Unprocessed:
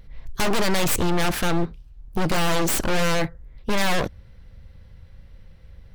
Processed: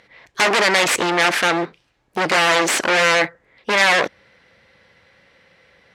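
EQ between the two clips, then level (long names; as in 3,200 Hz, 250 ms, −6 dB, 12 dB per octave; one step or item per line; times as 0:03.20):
band-pass filter 390–7,900 Hz
parametric band 2,000 Hz +6.5 dB 0.83 octaves
+7.0 dB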